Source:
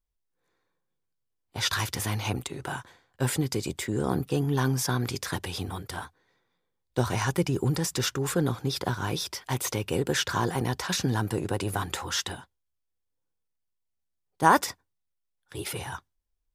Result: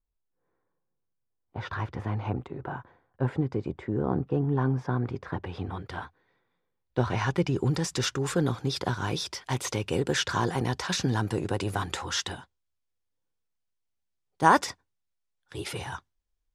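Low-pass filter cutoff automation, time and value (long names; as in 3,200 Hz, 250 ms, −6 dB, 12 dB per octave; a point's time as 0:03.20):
0:05.32 1,200 Hz
0:05.89 3,000 Hz
0:07.04 3,000 Hz
0:07.98 7,600 Hz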